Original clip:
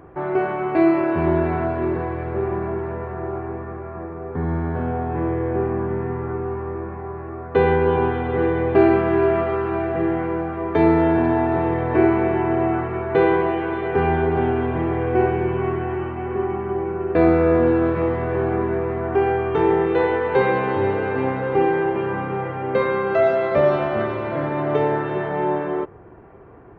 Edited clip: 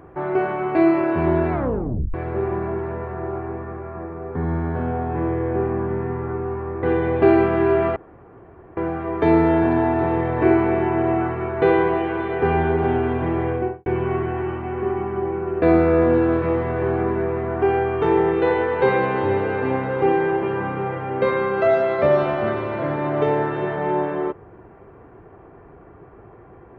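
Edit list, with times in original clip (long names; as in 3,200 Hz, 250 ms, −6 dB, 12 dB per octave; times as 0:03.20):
0:01.52: tape stop 0.62 s
0:06.83–0:08.36: remove
0:09.49–0:10.30: fill with room tone
0:14.99–0:15.39: fade out and dull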